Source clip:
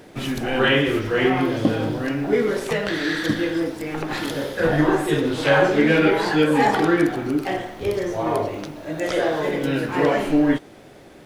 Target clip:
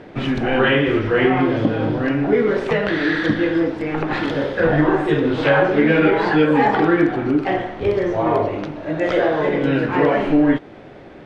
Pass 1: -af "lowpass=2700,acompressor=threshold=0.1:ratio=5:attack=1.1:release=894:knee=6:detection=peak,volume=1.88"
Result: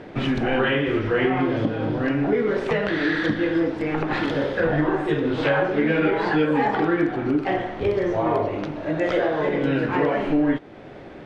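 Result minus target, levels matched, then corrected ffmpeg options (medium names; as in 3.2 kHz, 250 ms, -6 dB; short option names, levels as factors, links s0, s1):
compression: peak gain reduction +6 dB
-af "lowpass=2700,acompressor=threshold=0.237:ratio=5:attack=1.1:release=894:knee=6:detection=peak,volume=1.88"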